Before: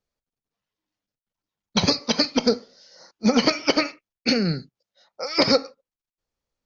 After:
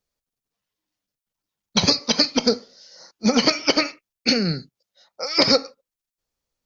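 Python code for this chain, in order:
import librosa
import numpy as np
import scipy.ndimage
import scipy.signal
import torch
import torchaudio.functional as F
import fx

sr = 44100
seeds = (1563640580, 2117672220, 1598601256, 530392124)

y = fx.high_shelf(x, sr, hz=4000.0, db=7.0)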